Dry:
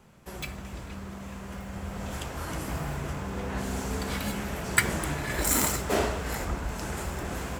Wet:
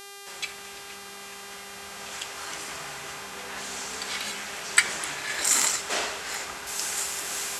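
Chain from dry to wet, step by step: weighting filter ITU-R 468; buzz 400 Hz, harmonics 31, -40 dBFS -1 dB/oct; high shelf 6000 Hz -7 dB, from 6.67 s +6 dB; gain -1.5 dB

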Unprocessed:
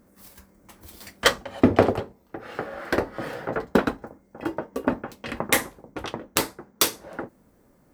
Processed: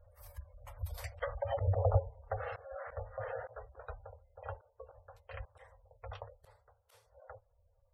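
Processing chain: Doppler pass-by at 1.67, 10 m/s, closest 5.2 m; elliptic band-stop 100–530 Hz, stop band 40 dB; treble ducked by the level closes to 2000 Hz, closed at -24 dBFS; spectral gate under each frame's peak -15 dB strong; bell 5200 Hz -8 dB 2.5 oct; auto swell 0.456 s; low shelf 370 Hz +12 dB; gain +6 dB

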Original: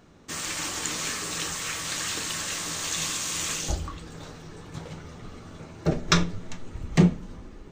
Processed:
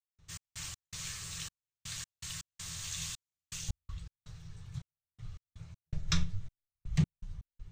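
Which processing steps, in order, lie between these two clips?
EQ curve 140 Hz 0 dB, 230 Hz -29 dB, 3500 Hz -10 dB; step gate ".x.x.xxx." 81 bpm -60 dB

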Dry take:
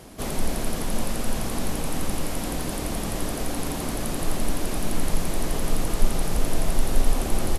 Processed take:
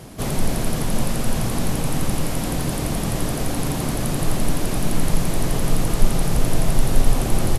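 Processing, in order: bell 130 Hz +10 dB 0.66 oct; gain +3.5 dB

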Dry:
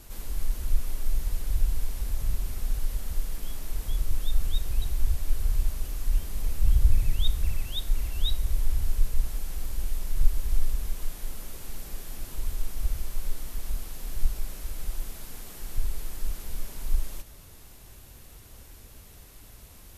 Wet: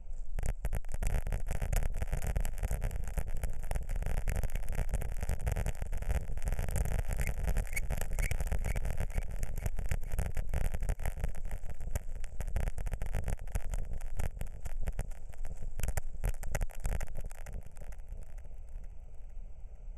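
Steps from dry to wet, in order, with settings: Wiener smoothing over 15 samples; low shelf 69 Hz +9.5 dB; compressor 2.5:1, threshold -35 dBFS, peak gain reduction 22 dB; wrapped overs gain 25.5 dB; pitch shift -9 st; bell 310 Hz -7.5 dB 0.34 oct; fixed phaser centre 1100 Hz, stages 6; on a send: split-band echo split 570 Hz, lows 0.633 s, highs 0.458 s, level -8 dB

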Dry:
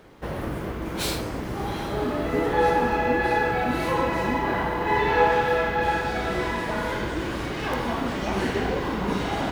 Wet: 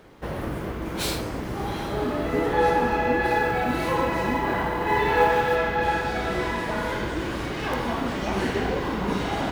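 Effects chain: 3.25–5.56 short-mantissa float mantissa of 4-bit

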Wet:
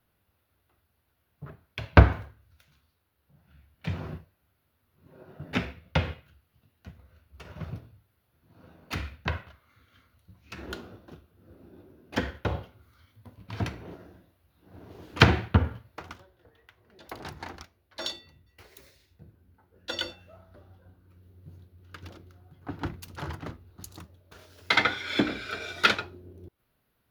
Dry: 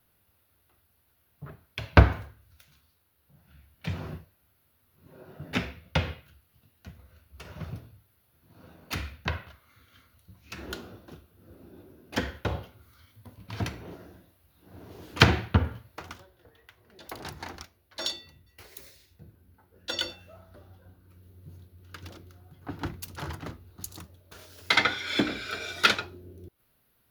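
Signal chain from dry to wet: high shelf 4800 Hz -8.5 dB; in parallel at -8.5 dB: crossover distortion -45.5 dBFS; on the sum: gain -1.5 dB

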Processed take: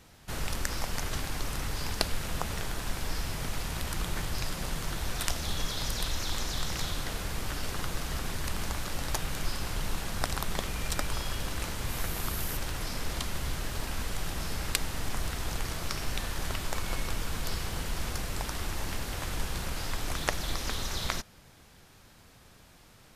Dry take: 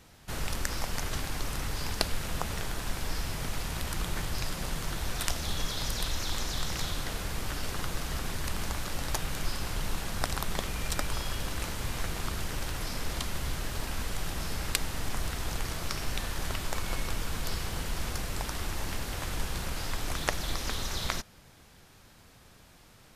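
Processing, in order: 11.88–12.56 bell 13000 Hz +7 dB -> +13.5 dB 0.62 oct

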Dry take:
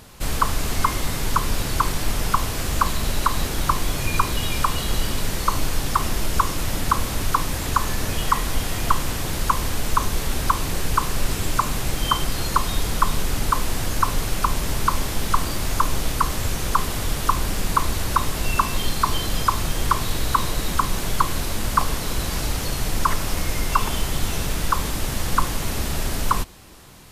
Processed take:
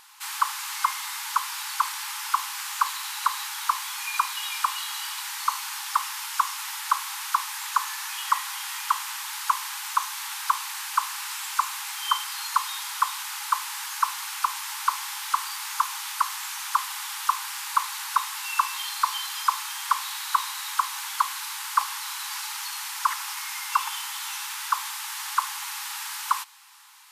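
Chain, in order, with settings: brick-wall FIR high-pass 790 Hz; gain -2.5 dB

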